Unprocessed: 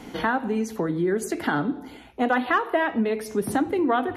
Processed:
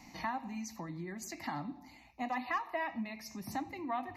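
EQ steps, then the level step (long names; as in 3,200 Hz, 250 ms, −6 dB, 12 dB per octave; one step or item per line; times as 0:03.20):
first-order pre-emphasis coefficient 0.8
high-shelf EQ 9,000 Hz −12 dB
phaser with its sweep stopped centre 2,200 Hz, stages 8
+2.5 dB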